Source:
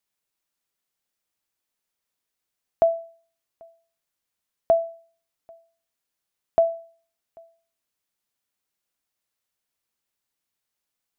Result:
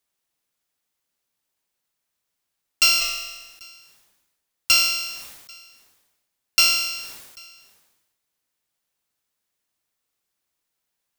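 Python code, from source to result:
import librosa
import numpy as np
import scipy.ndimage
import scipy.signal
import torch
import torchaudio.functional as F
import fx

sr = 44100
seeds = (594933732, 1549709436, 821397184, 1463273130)

y = fx.bit_reversed(x, sr, seeds[0], block=256)
y = 10.0 ** (-13.0 / 20.0) * np.tanh(y / 10.0 ** (-13.0 / 20.0))
y = fx.room_flutter(y, sr, wall_m=7.7, rt60_s=0.76, at=(3.0, 3.63), fade=0.02)
y = fx.sustainer(y, sr, db_per_s=49.0)
y = y * 10.0 ** (3.5 / 20.0)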